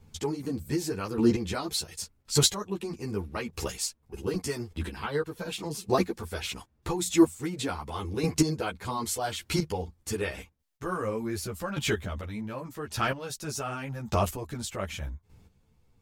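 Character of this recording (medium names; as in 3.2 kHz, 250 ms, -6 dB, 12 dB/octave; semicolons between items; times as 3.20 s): chopped level 0.85 Hz, depth 65%, duty 15%; a shimmering, thickened sound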